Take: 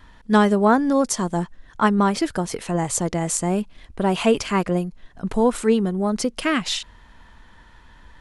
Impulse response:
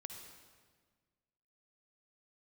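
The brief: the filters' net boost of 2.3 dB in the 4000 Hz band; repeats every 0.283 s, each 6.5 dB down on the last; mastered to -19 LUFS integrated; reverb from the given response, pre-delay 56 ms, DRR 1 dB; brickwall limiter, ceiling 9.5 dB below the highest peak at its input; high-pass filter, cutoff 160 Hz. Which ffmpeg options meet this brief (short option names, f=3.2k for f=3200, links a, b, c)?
-filter_complex "[0:a]highpass=160,equalizer=f=4k:t=o:g=3,alimiter=limit=-14dB:level=0:latency=1,aecho=1:1:283|566|849|1132|1415|1698:0.473|0.222|0.105|0.0491|0.0231|0.0109,asplit=2[a][b];[1:a]atrim=start_sample=2205,adelay=56[c];[b][c]afir=irnorm=-1:irlink=0,volume=3dB[d];[a][d]amix=inputs=2:normalize=0,volume=2dB"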